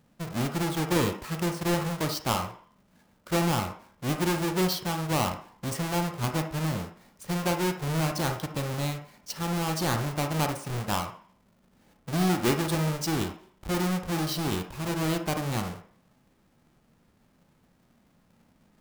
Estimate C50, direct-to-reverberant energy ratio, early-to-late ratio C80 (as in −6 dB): 8.0 dB, 5.5 dB, 13.5 dB